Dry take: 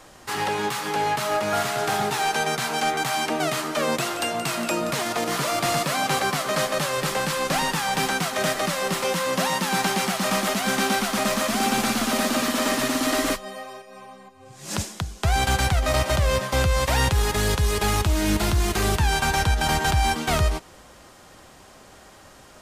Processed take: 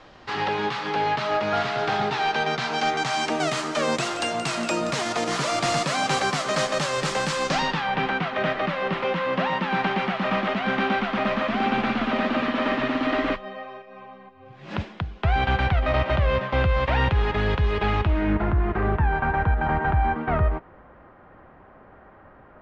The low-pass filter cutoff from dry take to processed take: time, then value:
low-pass filter 24 dB per octave
0:02.42 4,400 Hz
0:03.37 7,700 Hz
0:07.42 7,700 Hz
0:07.90 3,000 Hz
0:17.98 3,000 Hz
0:18.45 1,800 Hz

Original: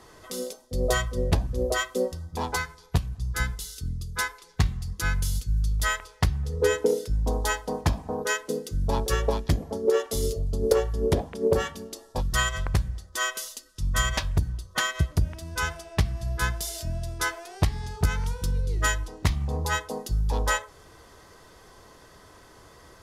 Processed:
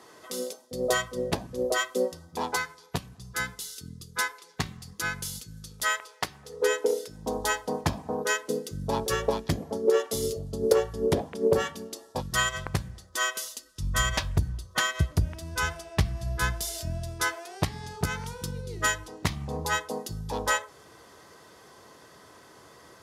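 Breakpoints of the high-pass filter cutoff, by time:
0:05.29 200 Hz
0:06.29 420 Hz
0:07.02 420 Hz
0:07.43 120 Hz
0:12.97 120 Hz
0:13.66 56 Hz
0:16.93 56 Hz
0:17.47 130 Hz

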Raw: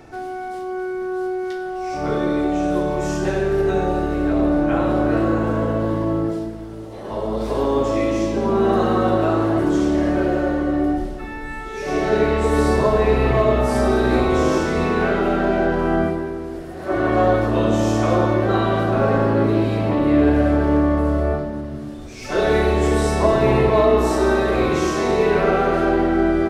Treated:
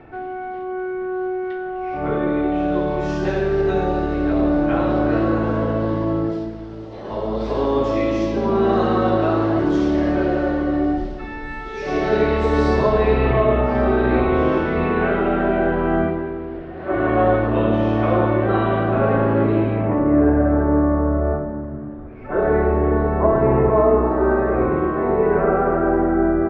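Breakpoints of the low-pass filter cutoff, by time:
low-pass filter 24 dB per octave
0:02.26 2,800 Hz
0:03.30 5,200 Hz
0:12.84 5,200 Hz
0:13.54 3,000 Hz
0:19.52 3,000 Hz
0:20.10 1,600 Hz

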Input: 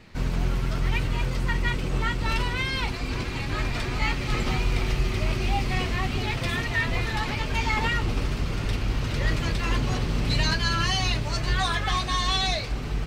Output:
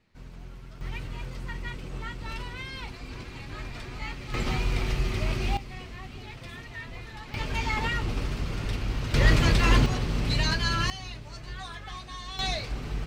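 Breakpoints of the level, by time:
−18.5 dB
from 0:00.81 −10.5 dB
from 0:04.34 −2.5 dB
from 0:05.57 −14.5 dB
from 0:07.34 −3.5 dB
from 0:09.14 +5 dB
from 0:09.86 −2 dB
from 0:10.90 −14.5 dB
from 0:12.39 −4 dB

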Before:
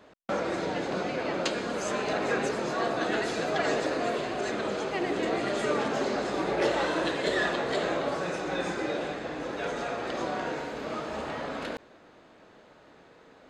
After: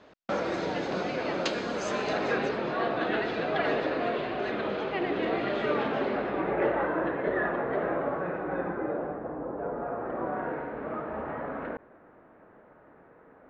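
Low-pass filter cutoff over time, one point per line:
low-pass filter 24 dB per octave
0:02.14 6,300 Hz
0:02.66 3,600 Hz
0:05.84 3,600 Hz
0:06.89 1,800 Hz
0:08.32 1,800 Hz
0:09.58 1,100 Hz
0:10.56 1,800 Hz

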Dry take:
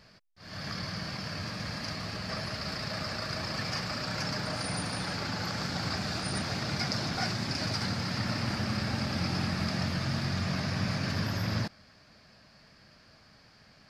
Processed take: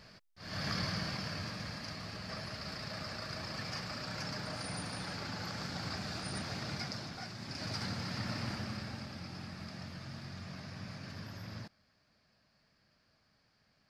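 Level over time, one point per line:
0:00.82 +1 dB
0:01.84 −7 dB
0:06.71 −7 dB
0:07.29 −14 dB
0:07.75 −6.5 dB
0:08.46 −6.5 dB
0:09.22 −14.5 dB

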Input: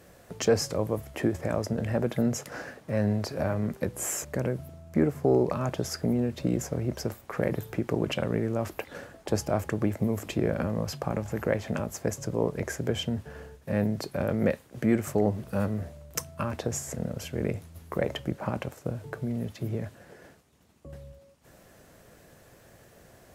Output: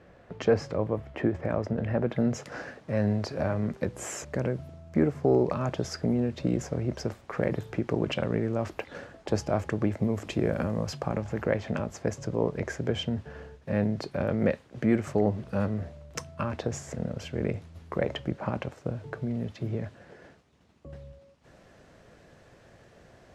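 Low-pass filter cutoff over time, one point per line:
0:02.05 2,700 Hz
0:02.47 5,700 Hz
0:10.21 5,700 Hz
0:10.54 11,000 Hz
0:11.28 5,000 Hz

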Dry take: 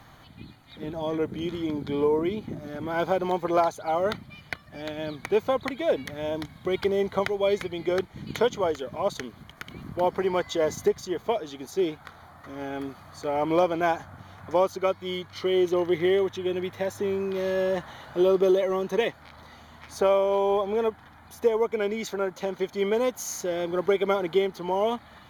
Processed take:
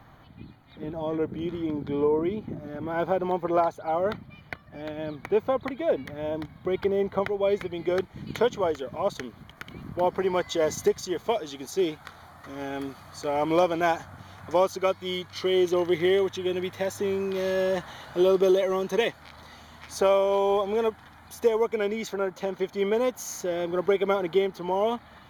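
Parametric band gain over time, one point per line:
parametric band 7,600 Hz 2.6 octaves
0:07.35 −11.5 dB
0:07.96 −3.5 dB
0:10.04 −3.5 dB
0:10.82 +4.5 dB
0:21.49 +4.5 dB
0:22.13 −2.5 dB

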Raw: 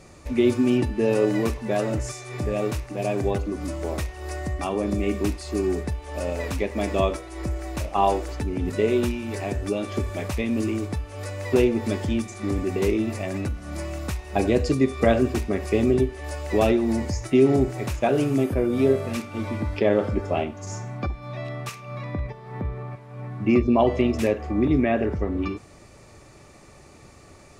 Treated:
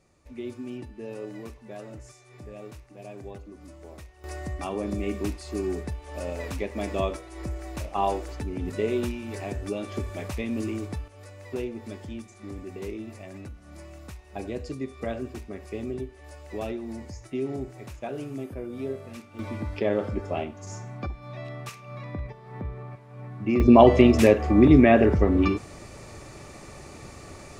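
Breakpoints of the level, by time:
−16.5 dB
from 0:04.24 −5 dB
from 0:11.08 −13 dB
from 0:19.39 −5 dB
from 0:23.60 +5.5 dB

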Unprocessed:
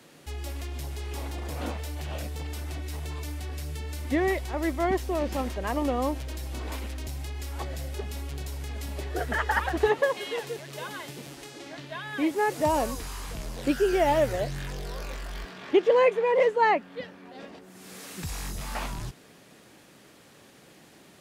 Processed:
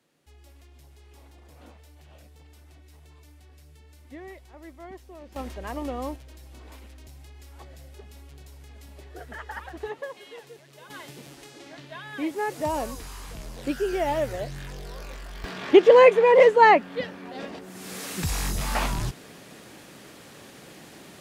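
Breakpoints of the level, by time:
−17 dB
from 0:05.36 −5 dB
from 0:06.16 −11.5 dB
from 0:10.90 −3 dB
from 0:15.44 +7 dB

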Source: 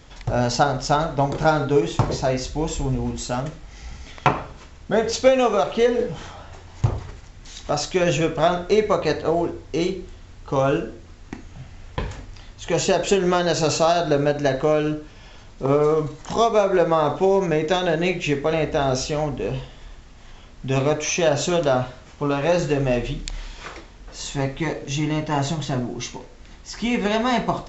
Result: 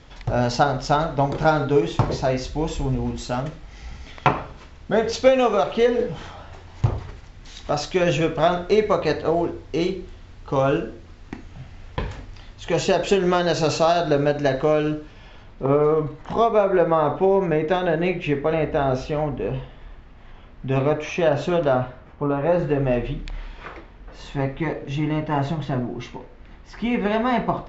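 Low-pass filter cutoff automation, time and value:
0:14.99 5,000 Hz
0:15.70 2,400 Hz
0:21.76 2,400 Hz
0:22.35 1,300 Hz
0:22.91 2,400 Hz

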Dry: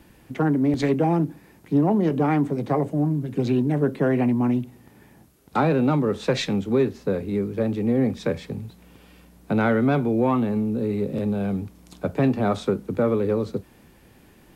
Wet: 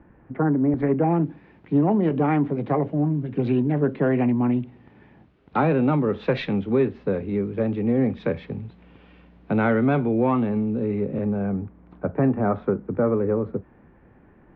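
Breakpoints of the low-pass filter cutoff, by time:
low-pass filter 24 dB per octave
0:00.86 1,700 Hz
0:01.26 3,100 Hz
0:10.71 3,100 Hz
0:11.57 1,800 Hz

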